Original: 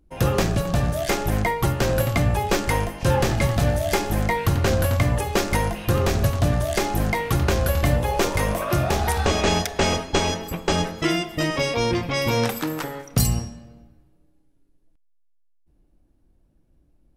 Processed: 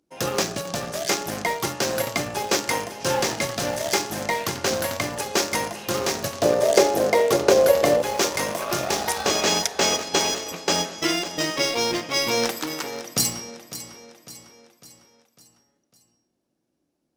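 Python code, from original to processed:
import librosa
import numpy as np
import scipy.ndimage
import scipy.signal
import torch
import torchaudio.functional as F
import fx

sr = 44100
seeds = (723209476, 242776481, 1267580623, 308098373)

p1 = scipy.signal.sosfilt(scipy.signal.butter(2, 250.0, 'highpass', fs=sr, output='sos'), x)
p2 = fx.peak_eq(p1, sr, hz=5700.0, db=9.0, octaves=1.1)
p3 = fx.echo_feedback(p2, sr, ms=552, feedback_pct=50, wet_db=-11)
p4 = np.where(np.abs(p3) >= 10.0 ** (-20.5 / 20.0), p3, 0.0)
p5 = p3 + (p4 * 10.0 ** (-6.5 / 20.0))
p6 = fx.peak_eq(p5, sr, hz=500.0, db=14.5, octaves=1.1, at=(6.42, 8.02))
y = p6 * 10.0 ** (-4.5 / 20.0)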